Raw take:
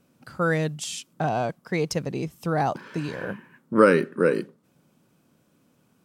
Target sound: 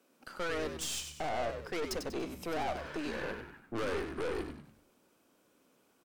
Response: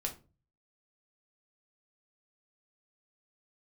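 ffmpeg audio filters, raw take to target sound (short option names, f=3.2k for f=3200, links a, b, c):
-filter_complex "[0:a]highpass=f=290:w=0.5412,highpass=f=290:w=1.3066,acompressor=threshold=-22dB:ratio=6,aeval=exprs='(tanh(44.7*val(0)+0.55)-tanh(0.55))/44.7':c=same,asplit=2[a][b];[b]asplit=5[c][d][e][f][g];[c]adelay=96,afreqshift=-73,volume=-7dB[h];[d]adelay=192,afreqshift=-146,volume=-15dB[i];[e]adelay=288,afreqshift=-219,volume=-22.9dB[j];[f]adelay=384,afreqshift=-292,volume=-30.9dB[k];[g]adelay=480,afreqshift=-365,volume=-38.8dB[l];[h][i][j][k][l]amix=inputs=5:normalize=0[m];[a][m]amix=inputs=2:normalize=0"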